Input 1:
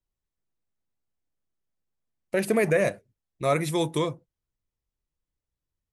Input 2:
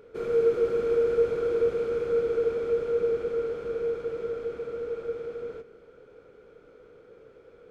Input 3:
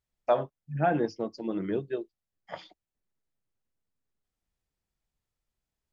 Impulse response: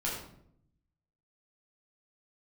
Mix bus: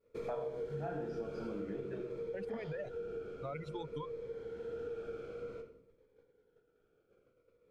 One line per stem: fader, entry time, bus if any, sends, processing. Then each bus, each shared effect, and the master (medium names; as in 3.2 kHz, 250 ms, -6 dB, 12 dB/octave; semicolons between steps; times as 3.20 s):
-6.0 dB, 0.00 s, bus A, no send, expander on every frequency bin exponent 2; reverb removal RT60 1.9 s; peaking EQ 330 Hz -8.5 dB 0.36 oct
-5.5 dB, 0.00 s, no bus, send -11 dB, expander -42 dBFS; Shepard-style phaser falling 0.53 Hz; auto duck -16 dB, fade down 0.95 s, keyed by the first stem
-7.5 dB, 0.00 s, bus A, send -3.5 dB, none
bus A: 0.0 dB, low-pass 2.3 kHz 12 dB/octave; peak limiter -29 dBFS, peak gain reduction 8 dB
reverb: on, RT60 0.70 s, pre-delay 9 ms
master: compression 5:1, threshold -38 dBFS, peak gain reduction 14 dB